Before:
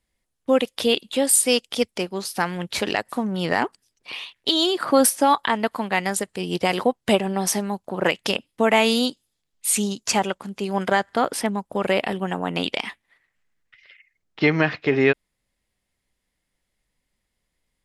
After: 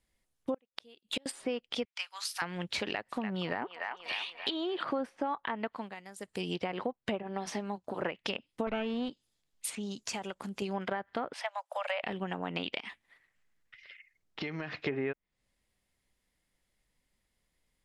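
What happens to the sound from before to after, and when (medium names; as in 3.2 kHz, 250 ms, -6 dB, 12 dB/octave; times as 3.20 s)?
0.54–1.26 s: inverted gate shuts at -13 dBFS, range -35 dB
1.85–2.42 s: inverse Chebyshev high-pass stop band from 310 Hz, stop band 60 dB
2.92–4.84 s: feedback echo behind a band-pass 292 ms, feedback 47%, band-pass 1.4 kHz, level -8 dB
5.66–6.47 s: dip -22.5 dB, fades 0.29 s
7.22–8.03 s: comb of notches 180 Hz
8.67–9.09 s: comb filter that takes the minimum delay 0.32 ms
9.75–10.62 s: compression 3:1, threshold -34 dBFS
11.33–12.04 s: steep high-pass 550 Hz 96 dB/octave
12.79–14.79 s: compression 5:1, threshold -32 dBFS
whole clip: low-pass that closes with the level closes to 1.6 kHz, closed at -16.5 dBFS; dynamic bell 2.6 kHz, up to +4 dB, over -39 dBFS, Q 1.2; compression 4:1, threshold -31 dBFS; trim -2 dB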